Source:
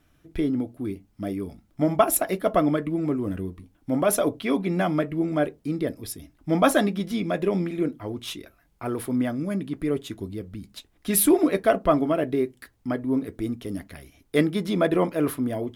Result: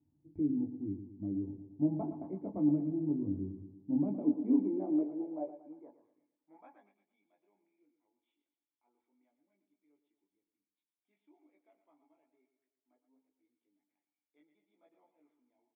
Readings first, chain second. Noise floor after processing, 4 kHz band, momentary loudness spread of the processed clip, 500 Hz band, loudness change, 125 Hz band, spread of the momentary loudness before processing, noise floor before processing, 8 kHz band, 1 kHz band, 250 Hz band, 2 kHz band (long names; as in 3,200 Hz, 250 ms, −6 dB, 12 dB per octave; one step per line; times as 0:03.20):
below −85 dBFS, below −40 dB, 13 LU, −21.0 dB, −9.5 dB, −14.0 dB, 16 LU, −64 dBFS, below −40 dB, −25.5 dB, −10.0 dB, below −40 dB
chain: formant resonators in series u
on a send: repeating echo 115 ms, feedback 53%, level −10.5 dB
on the sum: high-pass filter sweep 100 Hz → 3,100 Hz, 0:03.54–0:07.19
multi-voice chorus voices 6, 0.14 Hz, delay 20 ms, depth 1.1 ms
level −2 dB